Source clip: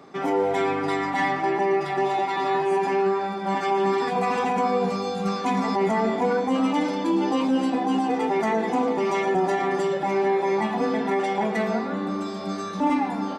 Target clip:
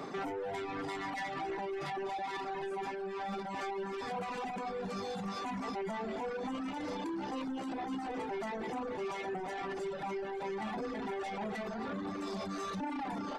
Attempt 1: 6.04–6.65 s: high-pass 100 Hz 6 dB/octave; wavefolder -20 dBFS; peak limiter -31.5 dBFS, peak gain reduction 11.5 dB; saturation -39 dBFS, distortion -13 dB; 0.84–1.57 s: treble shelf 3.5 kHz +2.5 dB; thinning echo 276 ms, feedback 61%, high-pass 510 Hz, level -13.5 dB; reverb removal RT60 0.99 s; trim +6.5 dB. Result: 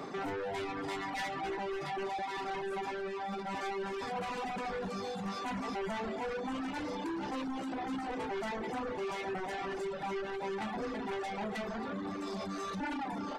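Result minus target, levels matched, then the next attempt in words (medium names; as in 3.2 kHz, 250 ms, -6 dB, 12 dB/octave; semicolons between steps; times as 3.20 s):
wavefolder: distortion +35 dB
6.04–6.65 s: high-pass 100 Hz 6 dB/octave; wavefolder -13 dBFS; peak limiter -31.5 dBFS, peak gain reduction 18.5 dB; saturation -39 dBFS, distortion -13 dB; 0.84–1.57 s: treble shelf 3.5 kHz +2.5 dB; thinning echo 276 ms, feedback 61%, high-pass 510 Hz, level -13.5 dB; reverb removal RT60 0.99 s; trim +6.5 dB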